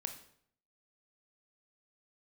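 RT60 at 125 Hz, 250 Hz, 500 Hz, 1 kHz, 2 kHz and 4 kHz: 0.75 s, 0.70 s, 0.65 s, 0.60 s, 0.55 s, 0.50 s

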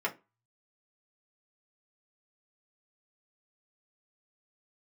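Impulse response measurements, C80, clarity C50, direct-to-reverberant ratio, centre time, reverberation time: 25.5 dB, 18.0 dB, -3.0 dB, 10 ms, 0.25 s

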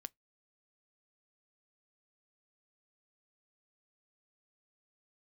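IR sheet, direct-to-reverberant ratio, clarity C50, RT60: 16.0 dB, 37.0 dB, 0.15 s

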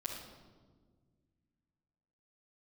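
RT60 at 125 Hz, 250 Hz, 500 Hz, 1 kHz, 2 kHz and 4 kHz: 2.8 s, 2.6 s, 1.8 s, 1.3 s, 0.95 s, 0.95 s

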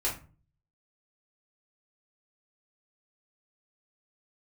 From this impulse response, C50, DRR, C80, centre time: 8.5 dB, -5.5 dB, 14.5 dB, 25 ms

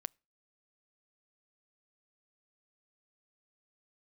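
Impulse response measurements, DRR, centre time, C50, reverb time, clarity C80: 20.5 dB, 1 ms, 33.5 dB, 0.35 s, 38.0 dB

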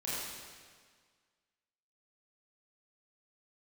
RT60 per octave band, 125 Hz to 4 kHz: 1.8 s, 1.7 s, 1.7 s, 1.7 s, 1.7 s, 1.6 s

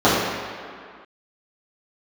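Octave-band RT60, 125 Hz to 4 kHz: 1.6 s, 2.0 s, 1.9 s, 2.2 s, no reading, 1.6 s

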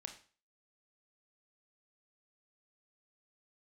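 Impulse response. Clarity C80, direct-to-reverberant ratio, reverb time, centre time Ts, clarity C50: 14.5 dB, 4.5 dB, 0.40 s, 14 ms, 10.0 dB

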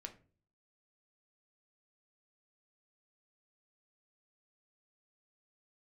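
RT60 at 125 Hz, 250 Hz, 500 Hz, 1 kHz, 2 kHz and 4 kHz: 0.65 s, 0.60 s, 0.50 s, 0.35 s, 0.30 s, 0.25 s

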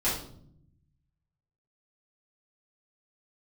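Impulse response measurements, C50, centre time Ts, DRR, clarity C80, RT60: 3.5 dB, 41 ms, -11.5 dB, 8.5 dB, 0.65 s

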